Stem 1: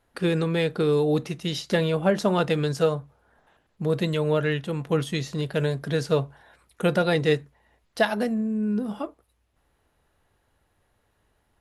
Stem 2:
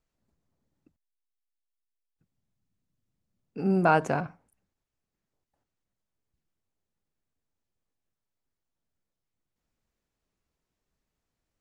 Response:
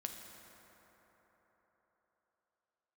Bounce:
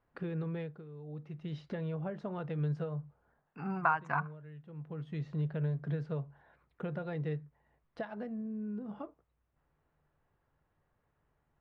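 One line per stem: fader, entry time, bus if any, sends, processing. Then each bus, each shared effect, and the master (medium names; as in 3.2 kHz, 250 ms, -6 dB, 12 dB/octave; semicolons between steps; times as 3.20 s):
-9.0 dB, 0.00 s, no send, compression 3:1, threshold -30 dBFS, peak gain reduction 11 dB; auto duck -15 dB, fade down 0.25 s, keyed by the second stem
+1.5 dB, 0.00 s, no send, reverb removal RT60 0.72 s; resonant low shelf 720 Hz -13 dB, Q 3; compression 6:1, threshold -26 dBFS, peak gain reduction 11 dB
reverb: none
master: low-pass 1.9 kHz 12 dB/octave; peaking EQ 150 Hz +12 dB 0.22 oct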